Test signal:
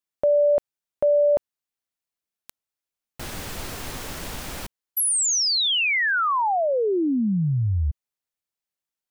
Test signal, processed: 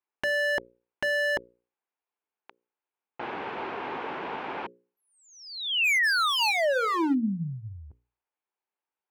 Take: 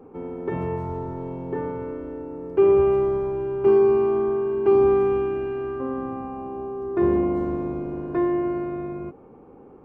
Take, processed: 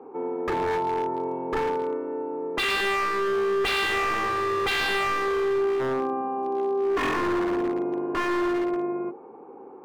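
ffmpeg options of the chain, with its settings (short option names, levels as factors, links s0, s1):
-af "highpass=370,equalizer=f=390:t=q:w=4:g=4,equalizer=f=600:t=q:w=4:g=-5,equalizer=f=880:t=q:w=4:g=5,equalizer=f=1300:t=q:w=4:g=-3,equalizer=f=1900:t=q:w=4:g=-6,lowpass=f=2300:w=0.5412,lowpass=f=2300:w=1.3066,aeval=exprs='0.0531*(abs(mod(val(0)/0.0531+3,4)-2)-1)':c=same,bandreject=f=60:t=h:w=6,bandreject=f=120:t=h:w=6,bandreject=f=180:t=h:w=6,bandreject=f=240:t=h:w=6,bandreject=f=300:t=h:w=6,bandreject=f=360:t=h:w=6,bandreject=f=420:t=h:w=6,bandreject=f=480:t=h:w=6,bandreject=f=540:t=h:w=6,volume=1.88"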